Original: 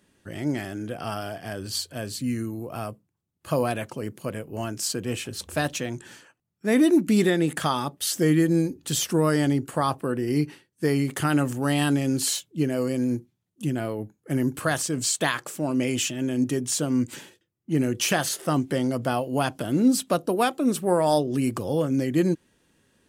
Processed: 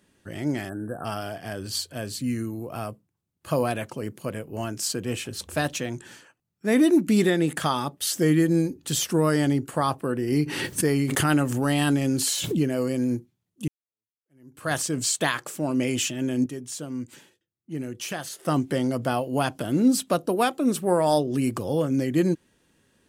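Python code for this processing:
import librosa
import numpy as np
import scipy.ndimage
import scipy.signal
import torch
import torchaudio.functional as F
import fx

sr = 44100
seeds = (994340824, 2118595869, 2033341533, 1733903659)

y = fx.spec_erase(x, sr, start_s=0.69, length_s=0.36, low_hz=1800.0, high_hz=7500.0)
y = fx.pre_swell(y, sr, db_per_s=35.0, at=(10.32, 12.72))
y = fx.edit(y, sr, fx.fade_in_span(start_s=13.68, length_s=1.04, curve='exp'),
    fx.clip_gain(start_s=16.46, length_s=1.99, db=-9.0), tone=tone)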